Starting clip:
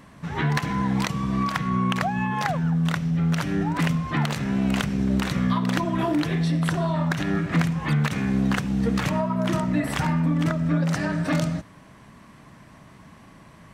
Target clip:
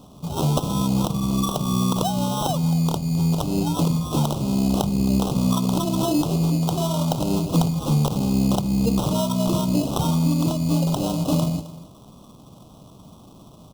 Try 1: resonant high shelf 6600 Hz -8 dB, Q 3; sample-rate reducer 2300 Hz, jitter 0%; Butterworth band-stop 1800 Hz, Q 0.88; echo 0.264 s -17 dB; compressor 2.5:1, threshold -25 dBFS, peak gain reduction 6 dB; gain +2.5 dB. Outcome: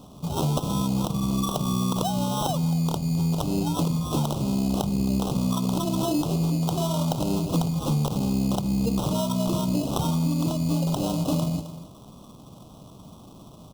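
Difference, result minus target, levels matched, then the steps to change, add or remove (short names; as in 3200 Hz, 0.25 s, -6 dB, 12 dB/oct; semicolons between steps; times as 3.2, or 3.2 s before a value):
compressor: peak gain reduction +6 dB
remove: compressor 2.5:1, threshold -25 dBFS, peak gain reduction 6 dB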